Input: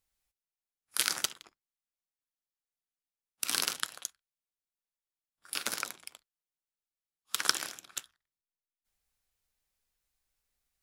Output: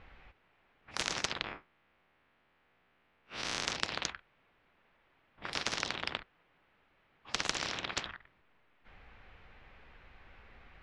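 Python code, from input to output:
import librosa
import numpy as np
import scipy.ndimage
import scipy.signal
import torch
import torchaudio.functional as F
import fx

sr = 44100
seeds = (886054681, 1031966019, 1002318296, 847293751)

y = fx.spec_blur(x, sr, span_ms=109.0, at=(1.44, 3.65))
y = scipy.signal.sosfilt(scipy.signal.butter(4, 2500.0, 'lowpass', fs=sr, output='sos'), y)
y = fx.spectral_comp(y, sr, ratio=10.0)
y = F.gain(torch.from_numpy(y), 3.5).numpy()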